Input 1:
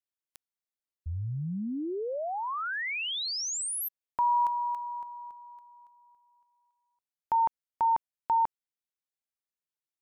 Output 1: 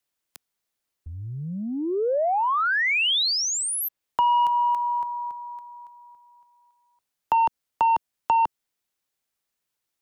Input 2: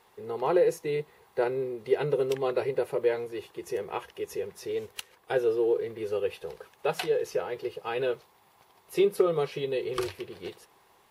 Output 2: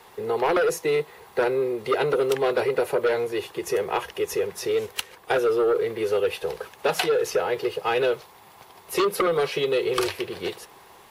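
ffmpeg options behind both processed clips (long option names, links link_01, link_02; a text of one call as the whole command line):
ffmpeg -i in.wav -filter_complex "[0:a]aeval=exprs='0.251*sin(PI/2*2.51*val(0)/0.251)':channel_layout=same,acrossover=split=180|410|4000[link_01][link_02][link_03][link_04];[link_01]acompressor=threshold=-47dB:ratio=2.5[link_05];[link_02]acompressor=threshold=-40dB:ratio=2[link_06];[link_03]acompressor=threshold=-21dB:ratio=2.5[link_07];[link_04]acompressor=threshold=-31dB:ratio=2[link_08];[link_05][link_06][link_07][link_08]amix=inputs=4:normalize=0" out.wav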